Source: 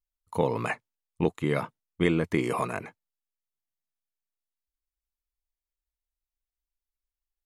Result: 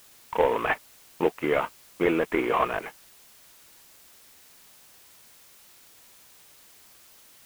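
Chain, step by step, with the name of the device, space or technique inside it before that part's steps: army field radio (band-pass 400–2900 Hz; CVSD coder 16 kbps; white noise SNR 23 dB); trim +7 dB

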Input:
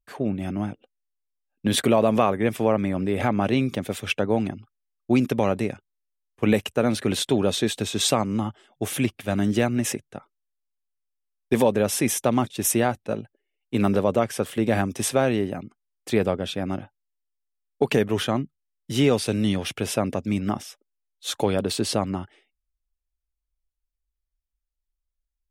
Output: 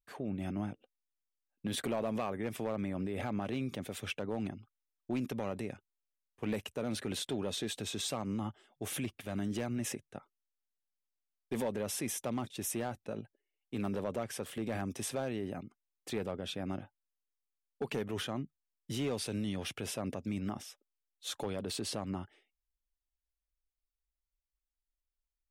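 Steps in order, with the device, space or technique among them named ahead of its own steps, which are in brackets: clipper into limiter (hard clipper -13 dBFS, distortion -18 dB; peak limiter -19.5 dBFS, peak gain reduction 6.5 dB); trim -8.5 dB

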